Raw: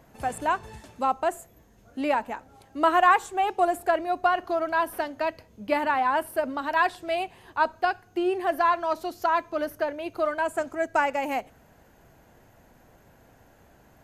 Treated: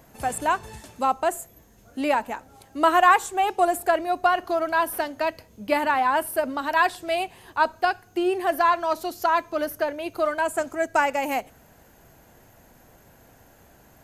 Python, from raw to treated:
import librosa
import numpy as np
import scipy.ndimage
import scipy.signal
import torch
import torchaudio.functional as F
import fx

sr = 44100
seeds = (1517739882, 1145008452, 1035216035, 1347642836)

y = fx.high_shelf(x, sr, hz=5500.0, db=9.0)
y = y * 10.0 ** (2.0 / 20.0)